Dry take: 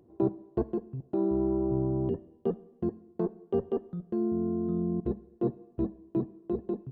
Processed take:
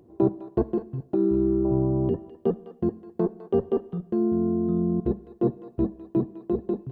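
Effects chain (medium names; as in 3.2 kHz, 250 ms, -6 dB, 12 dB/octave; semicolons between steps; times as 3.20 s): 1.15–1.65 s: high-order bell 740 Hz -14 dB 1.1 oct; thinning echo 206 ms, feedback 26%, high-pass 1.2 kHz, level -10 dB; trim +5.5 dB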